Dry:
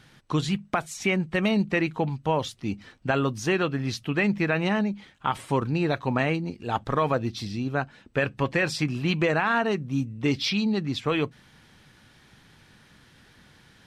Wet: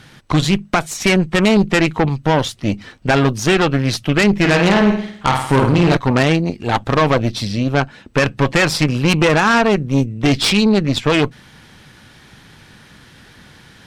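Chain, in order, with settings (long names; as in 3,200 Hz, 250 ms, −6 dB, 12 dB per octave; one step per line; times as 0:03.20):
0:04.37–0:05.97: flutter between parallel walls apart 9 metres, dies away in 0.63 s
harmonic generator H 5 −17 dB, 8 −15 dB, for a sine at −9 dBFS
level +6.5 dB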